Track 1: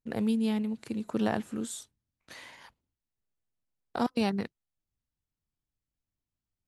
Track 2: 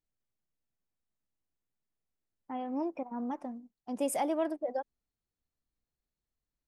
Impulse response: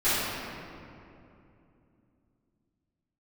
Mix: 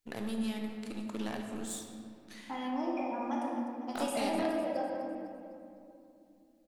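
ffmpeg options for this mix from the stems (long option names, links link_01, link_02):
-filter_complex "[0:a]acompressor=threshold=-29dB:ratio=6,aeval=exprs='0.0794*(cos(1*acos(clip(val(0)/0.0794,-1,1)))-cos(1*PI/2))+0.00355*(cos(6*acos(clip(val(0)/0.0794,-1,1)))-cos(6*PI/2))+0.00501*(cos(7*acos(clip(val(0)/0.0794,-1,1)))-cos(7*PI/2))':channel_layout=same,volume=-4dB,asplit=2[link_01][link_02];[link_02]volume=-17dB[link_03];[1:a]acrossover=split=380|3000[link_04][link_05][link_06];[link_04]acompressor=threshold=-46dB:ratio=4[link_07];[link_05]acompressor=threshold=-40dB:ratio=4[link_08];[link_06]acompressor=threshold=-57dB:ratio=4[link_09];[link_07][link_08][link_09]amix=inputs=3:normalize=0,volume=2dB,asplit=3[link_10][link_11][link_12];[link_11]volume=-9.5dB[link_13];[link_12]volume=-8dB[link_14];[2:a]atrim=start_sample=2205[link_15];[link_03][link_13]amix=inputs=2:normalize=0[link_16];[link_16][link_15]afir=irnorm=-1:irlink=0[link_17];[link_14]aecho=0:1:252|504|756|1008|1260|1512:1|0.43|0.185|0.0795|0.0342|0.0147[link_18];[link_01][link_10][link_17][link_18]amix=inputs=4:normalize=0,tiltshelf=frequency=1400:gain=-4.5"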